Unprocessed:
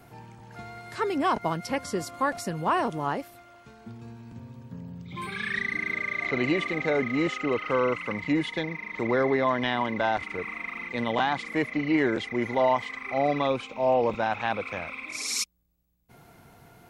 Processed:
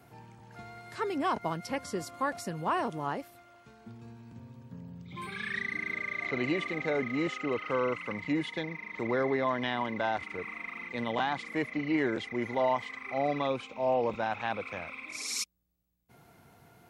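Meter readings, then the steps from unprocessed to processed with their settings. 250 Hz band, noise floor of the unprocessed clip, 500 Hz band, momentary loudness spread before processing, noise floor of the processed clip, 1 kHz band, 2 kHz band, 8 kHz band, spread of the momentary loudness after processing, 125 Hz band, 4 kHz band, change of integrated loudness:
-5.0 dB, -54 dBFS, -5.0 dB, 18 LU, -60 dBFS, -5.0 dB, -5.0 dB, -5.0 dB, 18 LU, -5.0 dB, -5.0 dB, -5.0 dB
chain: HPF 56 Hz; gain -5 dB

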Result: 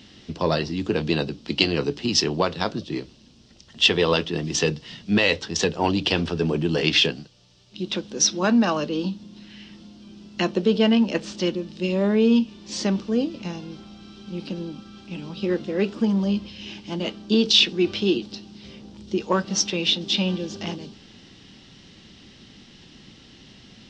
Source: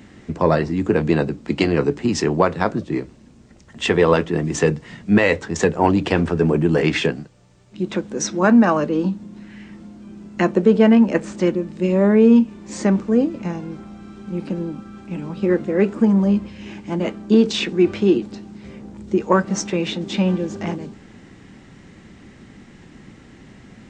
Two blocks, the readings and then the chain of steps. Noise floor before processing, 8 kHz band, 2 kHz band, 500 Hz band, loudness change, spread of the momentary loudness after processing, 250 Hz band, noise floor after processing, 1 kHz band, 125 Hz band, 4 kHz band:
-46 dBFS, +3.5 dB, -2.0 dB, -6.0 dB, -4.0 dB, 18 LU, -6.0 dB, -50 dBFS, -6.0 dB, -6.0 dB, +8.5 dB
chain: band shelf 4000 Hz +15 dB 1.3 oct; gain -6 dB

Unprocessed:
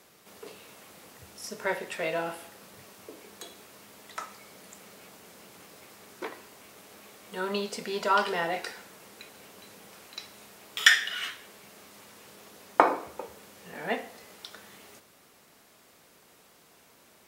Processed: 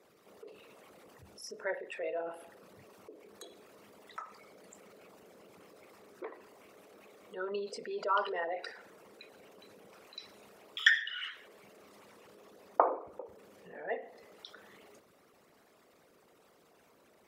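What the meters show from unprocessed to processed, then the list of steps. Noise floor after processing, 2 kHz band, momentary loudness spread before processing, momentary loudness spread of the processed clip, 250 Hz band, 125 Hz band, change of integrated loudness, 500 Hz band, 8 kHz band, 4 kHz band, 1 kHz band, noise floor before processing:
-65 dBFS, -5.5 dB, 24 LU, 23 LU, -10.5 dB, under -10 dB, -6.5 dB, -4.5 dB, -15.5 dB, -8.0 dB, -6.5 dB, -59 dBFS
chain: formant sharpening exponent 2; gain -6 dB

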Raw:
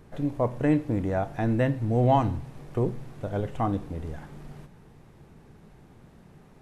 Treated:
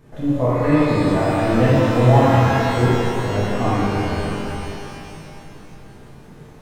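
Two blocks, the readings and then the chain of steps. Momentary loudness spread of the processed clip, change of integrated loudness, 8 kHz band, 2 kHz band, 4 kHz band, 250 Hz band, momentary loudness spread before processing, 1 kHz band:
16 LU, +9.5 dB, n/a, +14.5 dB, +18.0 dB, +9.0 dB, 16 LU, +9.5 dB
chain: shimmer reverb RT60 2.9 s, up +12 st, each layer -8 dB, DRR -9.5 dB; gain -1 dB

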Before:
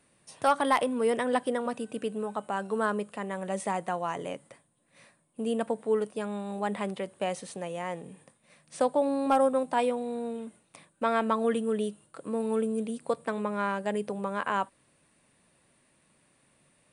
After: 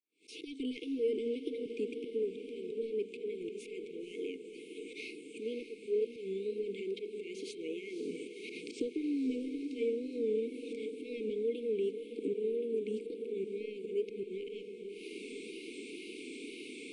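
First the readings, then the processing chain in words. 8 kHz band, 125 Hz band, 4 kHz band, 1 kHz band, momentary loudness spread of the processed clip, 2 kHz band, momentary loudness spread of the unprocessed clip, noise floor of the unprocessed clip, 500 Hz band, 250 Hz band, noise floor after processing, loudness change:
-12.0 dB, under -10 dB, -5.0 dB, under -40 dB, 11 LU, -12.5 dB, 11 LU, -68 dBFS, -5.0 dB, -6.5 dB, -50 dBFS, -8.5 dB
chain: recorder AGC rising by 68 dB/s; expander -44 dBFS; Chebyshev high-pass 290 Hz, order 4; auto swell 0.105 s; wow and flutter 120 cents; in parallel at -8 dB: soft clip -26.5 dBFS, distortion -10 dB; on the sum: brick-wall FIR band-stop 480–2100 Hz; tape spacing loss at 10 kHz 27 dB; on a send: diffused feedback echo 0.541 s, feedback 66%, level -9 dB; on the sum: mismatched tape noise reduction encoder only; gain -3 dB

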